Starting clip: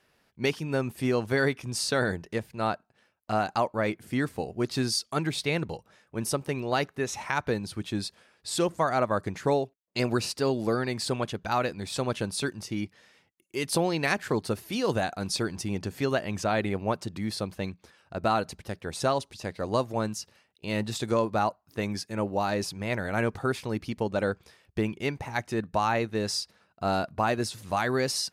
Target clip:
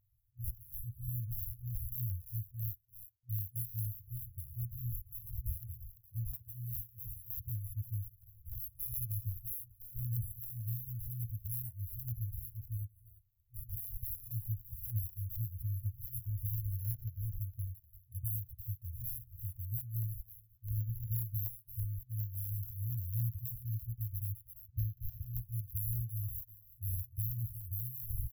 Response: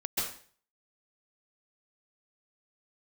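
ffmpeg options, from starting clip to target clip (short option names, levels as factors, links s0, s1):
-filter_complex "[0:a]asplit=2[s0][s1];[s1]adelay=340,highpass=300,lowpass=3400,asoftclip=type=hard:threshold=0.0944,volume=0.398[s2];[s0][s2]amix=inputs=2:normalize=0,acrusher=samples=16:mix=1:aa=0.000001:lfo=1:lforange=9.6:lforate=0.25,afftfilt=real='re*(1-between(b*sr/4096,120,11000))':imag='im*(1-between(b*sr/4096,120,11000))':win_size=4096:overlap=0.75,volume=1.12"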